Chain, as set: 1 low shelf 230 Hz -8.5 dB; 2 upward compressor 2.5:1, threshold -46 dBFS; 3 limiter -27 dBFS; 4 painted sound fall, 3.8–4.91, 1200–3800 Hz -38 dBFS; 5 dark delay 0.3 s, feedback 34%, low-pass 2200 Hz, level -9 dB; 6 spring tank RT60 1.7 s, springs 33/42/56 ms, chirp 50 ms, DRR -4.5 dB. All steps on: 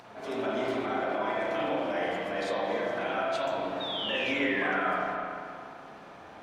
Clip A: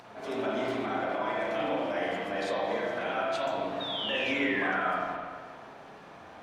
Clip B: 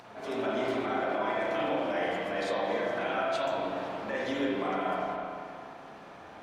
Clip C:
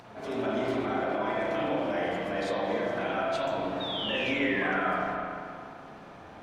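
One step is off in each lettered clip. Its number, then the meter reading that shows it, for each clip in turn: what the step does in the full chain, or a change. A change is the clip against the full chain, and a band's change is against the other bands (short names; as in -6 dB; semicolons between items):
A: 5, momentary loudness spread change +4 LU; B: 4, 4 kHz band -5.5 dB; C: 1, 125 Hz band +5.5 dB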